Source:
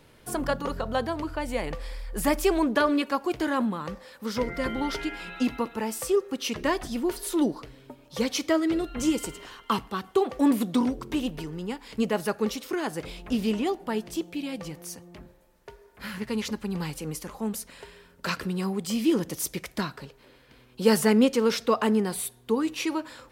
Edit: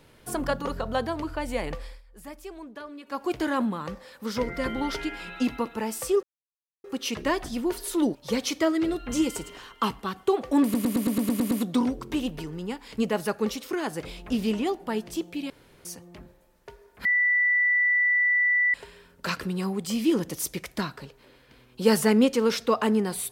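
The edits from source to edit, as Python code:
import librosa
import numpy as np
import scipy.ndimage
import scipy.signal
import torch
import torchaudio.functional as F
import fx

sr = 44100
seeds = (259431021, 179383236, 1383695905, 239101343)

y = fx.edit(x, sr, fx.fade_down_up(start_s=1.76, length_s=1.53, db=-18.0, fade_s=0.26),
    fx.insert_silence(at_s=6.23, length_s=0.61),
    fx.cut(start_s=7.54, length_s=0.49),
    fx.stutter(start_s=10.51, slice_s=0.11, count=9),
    fx.room_tone_fill(start_s=14.5, length_s=0.35),
    fx.bleep(start_s=16.05, length_s=1.69, hz=1970.0, db=-19.0), tone=tone)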